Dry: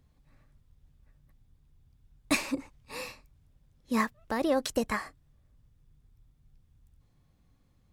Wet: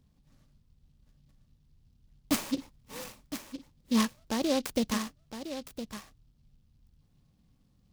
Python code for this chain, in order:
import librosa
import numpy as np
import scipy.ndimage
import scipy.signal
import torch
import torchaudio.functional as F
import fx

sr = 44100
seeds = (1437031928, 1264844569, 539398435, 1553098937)

y = fx.peak_eq(x, sr, hz=200.0, db=8.0, octaves=0.89)
y = y + 10.0 ** (-10.5 / 20.0) * np.pad(y, (int(1012 * sr / 1000.0), 0))[:len(y)]
y = fx.noise_mod_delay(y, sr, seeds[0], noise_hz=3800.0, depth_ms=0.1)
y = y * librosa.db_to_amplitude(-3.0)